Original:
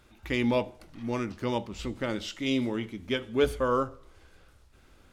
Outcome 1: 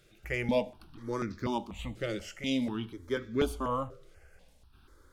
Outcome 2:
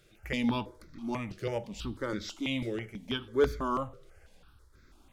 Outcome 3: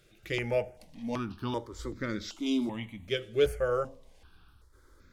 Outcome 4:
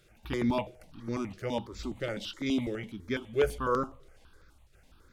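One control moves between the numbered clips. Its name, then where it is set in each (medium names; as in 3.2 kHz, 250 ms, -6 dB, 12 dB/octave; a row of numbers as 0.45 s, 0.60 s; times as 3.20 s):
stepped phaser, rate: 4.1 Hz, 6.1 Hz, 2.6 Hz, 12 Hz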